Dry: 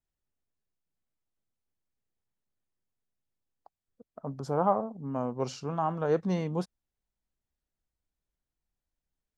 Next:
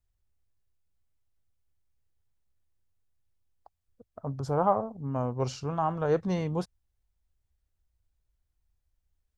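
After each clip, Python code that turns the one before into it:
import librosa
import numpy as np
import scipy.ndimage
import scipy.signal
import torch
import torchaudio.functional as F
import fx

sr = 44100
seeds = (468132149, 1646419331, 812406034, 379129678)

y = fx.low_shelf_res(x, sr, hz=130.0, db=11.0, q=1.5)
y = y * librosa.db_to_amplitude(1.5)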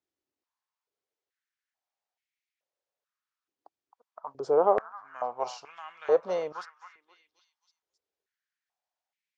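y = scipy.signal.sosfilt(scipy.signal.butter(4, 6900.0, 'lowpass', fs=sr, output='sos'), x)
y = fx.echo_stepped(y, sr, ms=265, hz=1100.0, octaves=0.7, feedback_pct=70, wet_db=-9.5)
y = fx.filter_held_highpass(y, sr, hz=2.3, low_hz=320.0, high_hz=2200.0)
y = y * librosa.db_to_amplitude(-2.5)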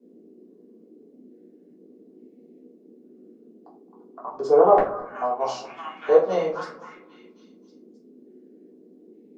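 y = fx.dmg_noise_band(x, sr, seeds[0], low_hz=210.0, high_hz=460.0, level_db=-60.0)
y = fx.echo_wet_lowpass(y, sr, ms=219, feedback_pct=33, hz=920.0, wet_db=-17.0)
y = fx.room_shoebox(y, sr, seeds[1], volume_m3=220.0, walls='furnished', distance_m=3.4)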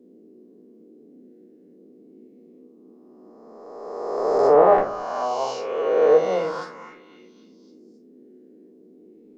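y = fx.spec_swells(x, sr, rise_s=1.86)
y = y * librosa.db_to_amplitude(-2.5)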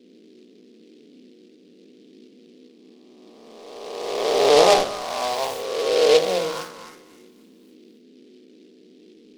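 y = fx.noise_mod_delay(x, sr, seeds[2], noise_hz=3400.0, depth_ms=0.083)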